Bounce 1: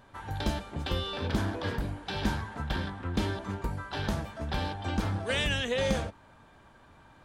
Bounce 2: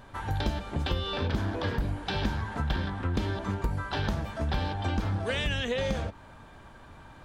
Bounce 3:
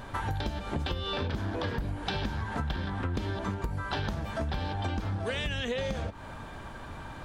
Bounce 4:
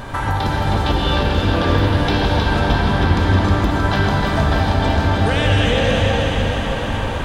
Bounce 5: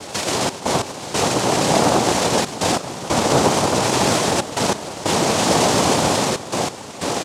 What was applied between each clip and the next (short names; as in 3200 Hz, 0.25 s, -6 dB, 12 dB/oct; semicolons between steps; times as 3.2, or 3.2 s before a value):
dynamic EQ 9700 Hz, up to -7 dB, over -58 dBFS, Q 1; compressor 5:1, threshold -33 dBFS, peak gain reduction 10 dB; low shelf 75 Hz +6.5 dB; gain +5.5 dB
compressor 6:1, threshold -37 dBFS, peak gain reduction 13.5 dB; gain +7.5 dB
in parallel at -1 dB: limiter -26.5 dBFS, peak gain reduction 9.5 dB; on the sum: echo with dull and thin repeats by turns 0.157 s, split 900 Hz, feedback 86%, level -4 dB; reverb RT60 3.8 s, pre-delay 61 ms, DRR -1 dB; gain +6 dB
echo 0.131 s -4 dB; noise vocoder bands 2; step gate "xxx.x..xxxxx" 92 bpm -12 dB; gain -1 dB